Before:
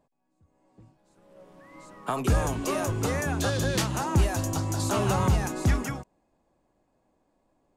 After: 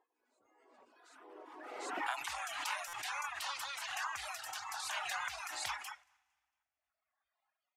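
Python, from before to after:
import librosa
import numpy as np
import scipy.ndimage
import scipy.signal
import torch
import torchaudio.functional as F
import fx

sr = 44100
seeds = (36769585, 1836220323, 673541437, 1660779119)

y = fx.noise_reduce_blind(x, sr, reduce_db=15)
y = fx.ellip_highpass(y, sr, hz=fx.steps((0.0, 340.0), (1.98, 930.0)), order=4, stop_db=50)
y = fx.echo_feedback(y, sr, ms=228, feedback_pct=44, wet_db=-24.0)
y = fx.rev_fdn(y, sr, rt60_s=1.8, lf_ratio=1.6, hf_ratio=0.95, size_ms=32.0, drr_db=16.5)
y = fx.spec_gate(y, sr, threshold_db=-10, keep='weak')
y = fx.dereverb_blind(y, sr, rt60_s=1.5)
y = fx.over_compress(y, sr, threshold_db=-39.0, ratio=-0.5)
y = fx.lowpass(y, sr, hz=1400.0, slope=6)
y = fx.buffer_glitch(y, sr, at_s=(2.88,), block=256, repeats=8)
y = fx.pre_swell(y, sr, db_per_s=32.0)
y = F.gain(torch.from_numpy(y), 7.0).numpy()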